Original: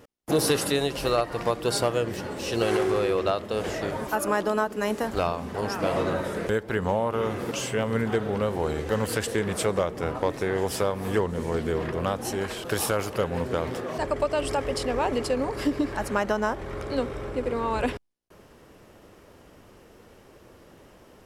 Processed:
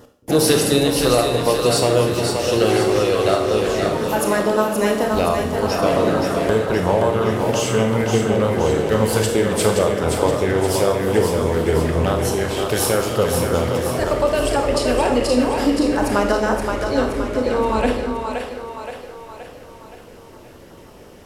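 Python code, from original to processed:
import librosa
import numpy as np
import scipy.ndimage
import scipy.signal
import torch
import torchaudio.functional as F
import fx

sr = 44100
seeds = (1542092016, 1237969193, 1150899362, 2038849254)

y = fx.filter_lfo_notch(x, sr, shape='saw_down', hz=5.7, low_hz=850.0, high_hz=2600.0, q=2.1)
y = fx.echo_split(y, sr, split_hz=420.0, low_ms=223, high_ms=523, feedback_pct=52, wet_db=-5.0)
y = fx.rev_schroeder(y, sr, rt60_s=0.65, comb_ms=25, drr_db=4.5)
y = y * 10.0 ** (6.5 / 20.0)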